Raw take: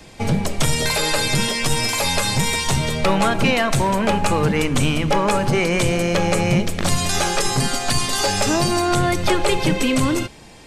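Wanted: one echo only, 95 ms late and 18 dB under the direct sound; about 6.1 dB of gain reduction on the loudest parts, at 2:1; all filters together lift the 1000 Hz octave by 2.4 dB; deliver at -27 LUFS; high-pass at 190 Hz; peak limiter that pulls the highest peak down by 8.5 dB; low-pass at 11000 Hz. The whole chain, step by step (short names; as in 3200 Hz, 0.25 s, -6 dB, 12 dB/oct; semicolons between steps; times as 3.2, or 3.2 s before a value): HPF 190 Hz; LPF 11000 Hz; bell 1000 Hz +3 dB; compressor 2:1, threshold -25 dBFS; limiter -18.5 dBFS; echo 95 ms -18 dB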